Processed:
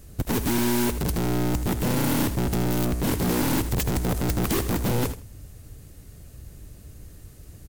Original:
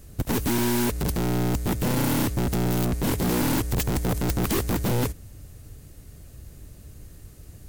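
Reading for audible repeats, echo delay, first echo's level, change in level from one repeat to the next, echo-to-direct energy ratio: 2, 80 ms, -12.0 dB, -15.5 dB, -12.0 dB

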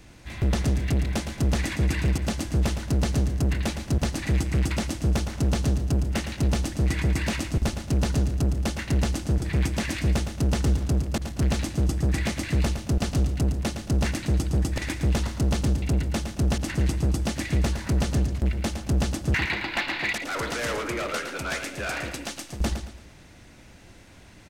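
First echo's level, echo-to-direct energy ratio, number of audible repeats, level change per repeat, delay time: -8.5 dB, -8.0 dB, 3, -9.0 dB, 0.112 s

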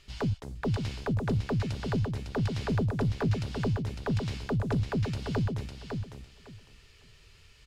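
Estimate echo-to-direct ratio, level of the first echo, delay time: -5.5 dB, -5.5 dB, 0.554 s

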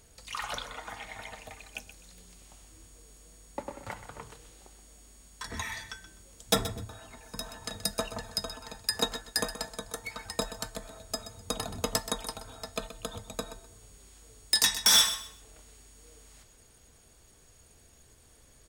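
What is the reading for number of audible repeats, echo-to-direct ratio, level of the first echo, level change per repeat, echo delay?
2, -12.5 dB, -12.5 dB, -13.0 dB, 0.127 s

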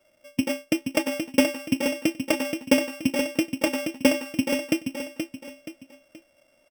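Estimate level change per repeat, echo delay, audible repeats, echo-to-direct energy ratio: -8.5 dB, 0.476 s, 3, -6.5 dB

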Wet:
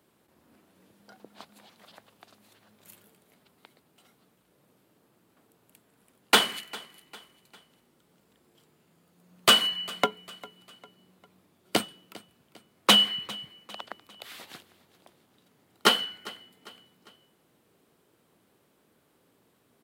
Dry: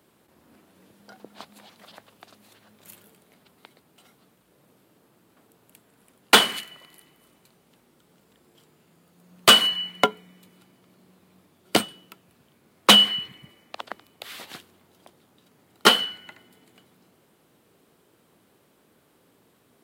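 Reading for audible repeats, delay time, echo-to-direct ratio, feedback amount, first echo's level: 2, 0.401 s, -19.5 dB, 43%, -20.5 dB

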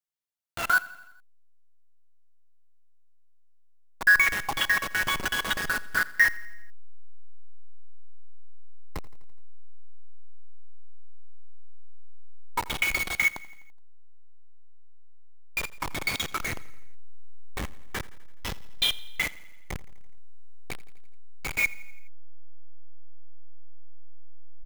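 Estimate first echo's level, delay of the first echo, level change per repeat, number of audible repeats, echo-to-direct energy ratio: -20.0 dB, 84 ms, -4.5 dB, 4, -18.0 dB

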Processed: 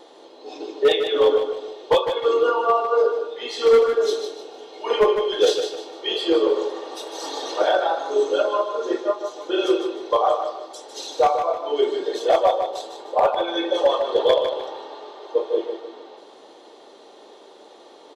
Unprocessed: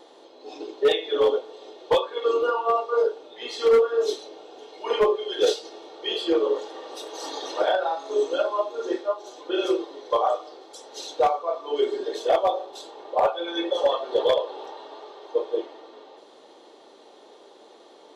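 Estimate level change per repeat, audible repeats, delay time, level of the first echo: -9.0 dB, 3, 0.152 s, -7.5 dB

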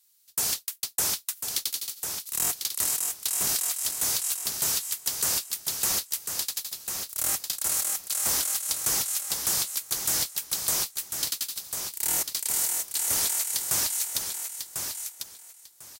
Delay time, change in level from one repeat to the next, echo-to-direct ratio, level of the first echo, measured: 1.047 s, -14.5 dB, -6.5 dB, -6.5 dB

